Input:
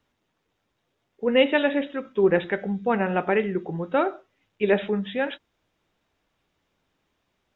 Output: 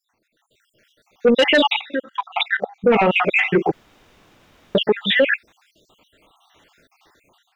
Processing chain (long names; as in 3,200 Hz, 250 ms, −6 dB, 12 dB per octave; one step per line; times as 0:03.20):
time-frequency cells dropped at random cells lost 63%
low-shelf EQ 250 Hz −10.5 dB
0:01.81–0:02.84: output level in coarse steps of 21 dB
soft clipping −22 dBFS, distortion −10 dB
dynamic equaliser 2,200 Hz, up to +5 dB, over −49 dBFS, Q 1.2
0:03.73–0:04.75: fill with room tone
automatic gain control gain up to 12.5 dB
boost into a limiter +16.5 dB
level −7 dB